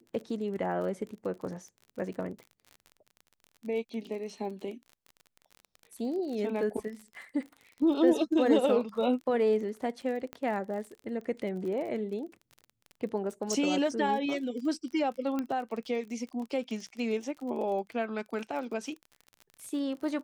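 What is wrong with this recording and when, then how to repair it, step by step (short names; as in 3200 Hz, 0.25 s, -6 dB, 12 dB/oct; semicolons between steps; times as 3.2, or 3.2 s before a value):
crackle 38/s -39 dBFS
10.33 pop -25 dBFS
13.53 pop
15.39 pop -20 dBFS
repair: de-click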